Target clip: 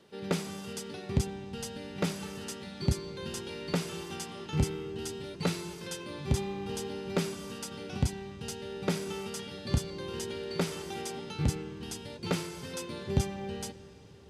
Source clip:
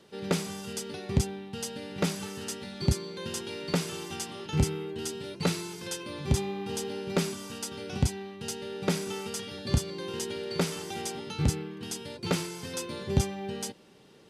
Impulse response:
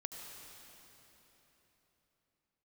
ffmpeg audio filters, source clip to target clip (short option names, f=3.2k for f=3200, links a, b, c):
-filter_complex "[0:a]asplit=2[a][b];[1:a]atrim=start_sample=2205,lowpass=5.1k[c];[b][c]afir=irnorm=-1:irlink=0,volume=-7.5dB[d];[a][d]amix=inputs=2:normalize=0,volume=-4.5dB"